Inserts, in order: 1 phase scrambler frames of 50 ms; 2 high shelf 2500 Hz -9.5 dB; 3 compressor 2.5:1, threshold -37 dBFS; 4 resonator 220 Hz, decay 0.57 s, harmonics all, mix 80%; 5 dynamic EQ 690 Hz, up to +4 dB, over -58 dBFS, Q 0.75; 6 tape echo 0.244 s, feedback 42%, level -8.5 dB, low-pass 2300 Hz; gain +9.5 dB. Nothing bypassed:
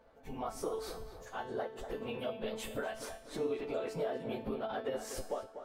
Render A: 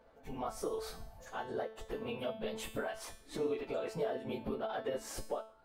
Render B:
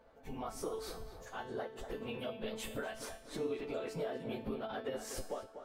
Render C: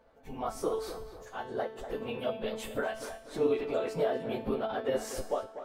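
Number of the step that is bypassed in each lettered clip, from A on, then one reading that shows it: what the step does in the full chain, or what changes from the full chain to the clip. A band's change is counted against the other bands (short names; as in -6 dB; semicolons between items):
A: 6, echo-to-direct -37.5 dB to none; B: 5, 1 kHz band -2.5 dB; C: 3, momentary loudness spread change +4 LU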